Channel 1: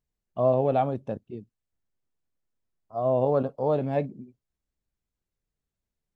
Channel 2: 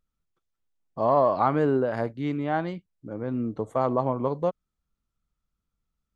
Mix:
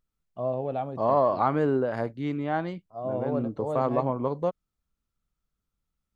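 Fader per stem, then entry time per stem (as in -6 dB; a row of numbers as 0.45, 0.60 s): -7.0, -1.5 dB; 0.00, 0.00 s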